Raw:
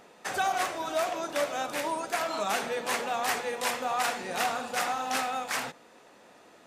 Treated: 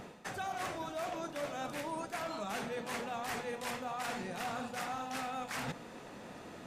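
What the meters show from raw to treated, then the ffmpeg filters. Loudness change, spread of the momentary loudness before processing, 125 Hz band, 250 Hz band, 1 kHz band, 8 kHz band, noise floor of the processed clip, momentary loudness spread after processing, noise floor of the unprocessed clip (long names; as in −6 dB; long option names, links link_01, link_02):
−9.5 dB, 3 LU, +3.0 dB, −2.5 dB, −9.5 dB, −11.5 dB, −50 dBFS, 5 LU, −56 dBFS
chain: -af "bass=frequency=250:gain=13,treble=frequency=4000:gain=-2,areverse,acompressor=threshold=-42dB:ratio=6,areverse,volume=4.5dB"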